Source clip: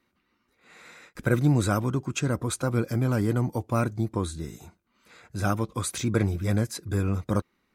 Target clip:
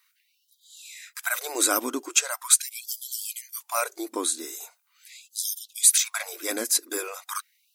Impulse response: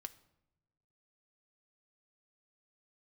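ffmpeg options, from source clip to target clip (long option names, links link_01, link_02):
-af "crystalizer=i=5:c=0,afftfilt=real='re*gte(b*sr/1024,220*pow(3100/220,0.5+0.5*sin(2*PI*0.41*pts/sr)))':imag='im*gte(b*sr/1024,220*pow(3100/220,0.5+0.5*sin(2*PI*0.41*pts/sr)))':win_size=1024:overlap=0.75"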